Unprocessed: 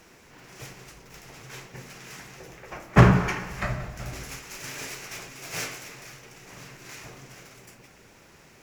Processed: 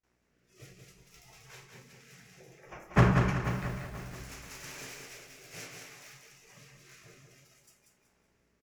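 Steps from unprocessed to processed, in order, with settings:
hum with harmonics 60 Hz, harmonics 37, −55 dBFS −3 dB per octave
noise gate with hold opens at −41 dBFS
noise reduction from a noise print of the clip's start 13 dB
rotating-speaker cabinet horn 0.6 Hz
on a send: repeating echo 188 ms, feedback 35%, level −5 dB
on the sum: feedback echo at a low word length 484 ms, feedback 35%, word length 6 bits, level −12 dB
level −7.5 dB

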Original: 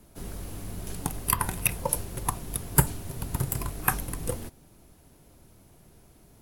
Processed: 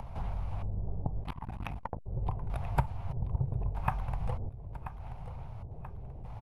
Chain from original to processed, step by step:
high-shelf EQ 8,600 Hz +7.5 dB
in parallel at −6 dB: sample-and-hold swept by an LFO 31×, swing 160% 2.9 Hz
on the sum: auto-filter low-pass square 0.8 Hz 420–2,300 Hz
on a send: repeating echo 983 ms, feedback 30%, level −22 dB
on the sum: upward compression, threshold −41 dBFS
drawn EQ curve 120 Hz 0 dB, 330 Hz −21 dB, 840 Hz +4 dB, 1,800 Hz −17 dB, 5,200 Hz −8 dB, 7,800 Hz −10 dB, 13,000 Hz −4 dB
downward compressor 2 to 1, threshold −46 dBFS, peak gain reduction 17.5 dB
0:01.23–0:02.06: saturating transformer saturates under 630 Hz
level +8.5 dB

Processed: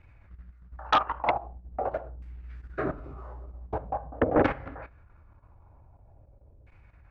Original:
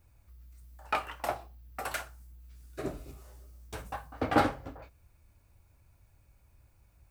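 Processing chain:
auto-filter low-pass saw down 0.45 Hz 480–2,300 Hz
output level in coarse steps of 13 dB
sine wavefolder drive 8 dB, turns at −14.5 dBFS
level −1 dB

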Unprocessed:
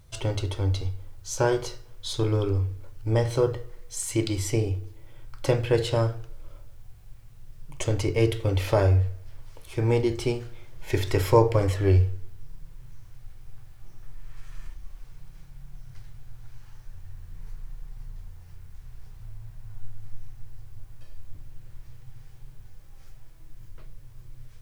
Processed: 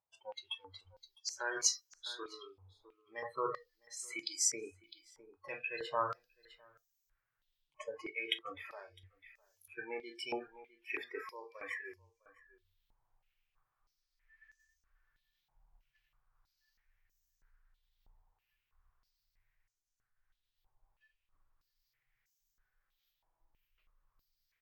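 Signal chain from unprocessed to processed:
reversed playback
downward compressor 10 to 1, threshold −32 dBFS, peak gain reduction 19.5 dB
reversed playback
slap from a distant wall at 15 metres, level −19 dB
on a send at −22.5 dB: convolution reverb RT60 0.55 s, pre-delay 75 ms
on the sum: noise reduction from a noise print of the clip's start 28 dB
single-tap delay 656 ms −21 dB
automatic gain control gain up to 8.5 dB
band-pass on a step sequencer 3.1 Hz 870–6,300 Hz
level +8.5 dB

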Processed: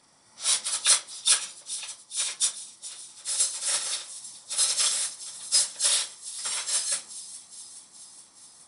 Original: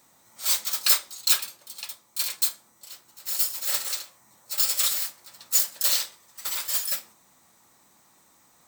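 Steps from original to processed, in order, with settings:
hearing-aid frequency compression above 2,700 Hz 1.5 to 1
delay with a high-pass on its return 421 ms, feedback 67%, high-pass 4,300 Hz, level −15 dB

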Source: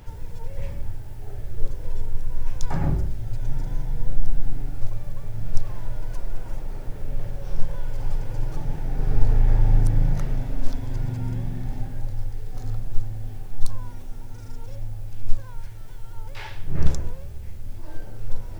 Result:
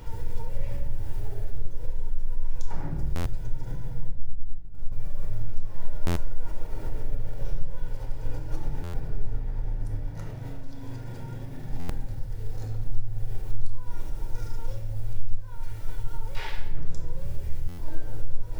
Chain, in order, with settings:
downward compressor 6 to 1, threshold −25 dBFS, peak gain reduction 18.5 dB
0:04.09–0:04.92: noise gate −25 dBFS, range −25 dB
brickwall limiter −26 dBFS, peak gain reduction 7.5 dB
0:10.04–0:11.69: low-shelf EQ 88 Hz −12 dB
convolution reverb RT60 0.85 s, pre-delay 6 ms, DRR 1.5 dB
buffer that repeats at 0:03.15/0:06.06/0:08.83/0:11.79/0:17.68, samples 512, times 8

